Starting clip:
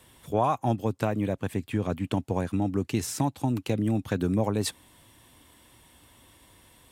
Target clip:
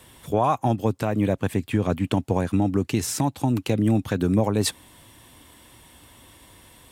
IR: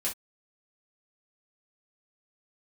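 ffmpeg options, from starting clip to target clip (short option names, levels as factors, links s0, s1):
-af "alimiter=limit=0.15:level=0:latency=1:release=164,volume=2"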